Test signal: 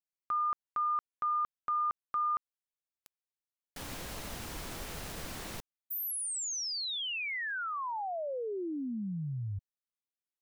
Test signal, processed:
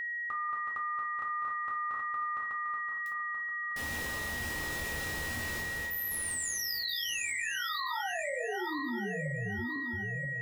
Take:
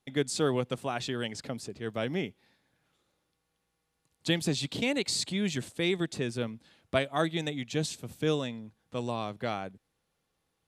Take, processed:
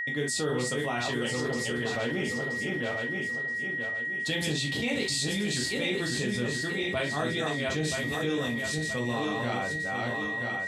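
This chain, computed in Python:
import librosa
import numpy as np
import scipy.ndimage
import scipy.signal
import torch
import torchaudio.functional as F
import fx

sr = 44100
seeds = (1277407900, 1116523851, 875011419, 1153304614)

y = fx.reverse_delay_fb(x, sr, ms=488, feedback_pct=53, wet_db=-4)
y = fx.rev_gated(y, sr, seeds[0], gate_ms=90, shape='falling', drr_db=-2.0)
y = y + 10.0 ** (-33.0 / 20.0) * np.sin(2.0 * np.pi * 1900.0 * np.arange(len(y)) / sr)
y = fx.env_flatten(y, sr, amount_pct=70)
y = y * librosa.db_to_amplitude(-8.5)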